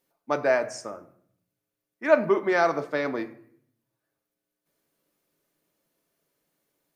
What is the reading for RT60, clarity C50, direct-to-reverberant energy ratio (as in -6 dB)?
0.65 s, 15.0 dB, 7.0 dB